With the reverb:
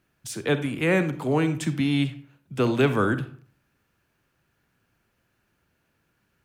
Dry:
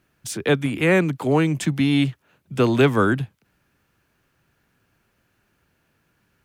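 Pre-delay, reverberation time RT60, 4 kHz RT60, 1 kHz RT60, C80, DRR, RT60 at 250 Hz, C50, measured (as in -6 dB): 37 ms, 0.50 s, 0.35 s, 0.50 s, 16.0 dB, 10.5 dB, 0.50 s, 12.0 dB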